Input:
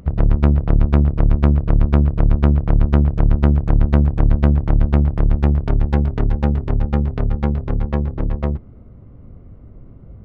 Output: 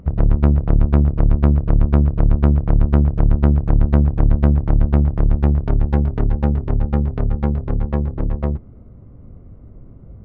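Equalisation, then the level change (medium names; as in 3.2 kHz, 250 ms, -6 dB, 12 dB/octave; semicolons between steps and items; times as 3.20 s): treble shelf 2.5 kHz -9.5 dB; 0.0 dB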